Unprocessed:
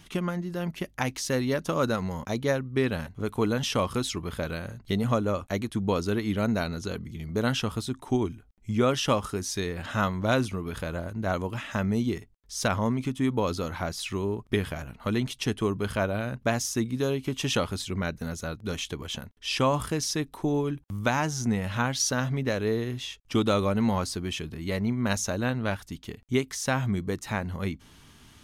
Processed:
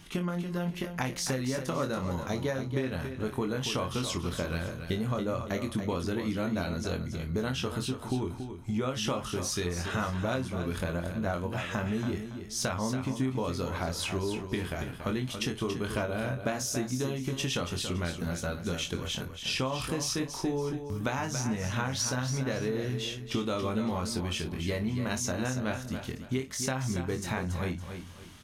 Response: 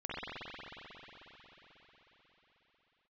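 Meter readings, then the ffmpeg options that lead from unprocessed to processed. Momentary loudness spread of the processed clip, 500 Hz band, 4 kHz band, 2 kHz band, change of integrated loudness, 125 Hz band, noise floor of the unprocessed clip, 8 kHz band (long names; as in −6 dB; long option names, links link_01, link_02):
4 LU, −4.5 dB, −2.0 dB, −3.5 dB, −3.5 dB, −2.5 dB, −56 dBFS, −1.5 dB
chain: -filter_complex "[0:a]asplit=2[link_01][link_02];[link_02]aecho=0:1:23|56:0.531|0.168[link_03];[link_01][link_03]amix=inputs=2:normalize=0,acompressor=threshold=-28dB:ratio=6,asplit=2[link_04][link_05];[link_05]aecho=0:1:281|562|843|1124:0.376|0.117|0.0361|0.0112[link_06];[link_04][link_06]amix=inputs=2:normalize=0"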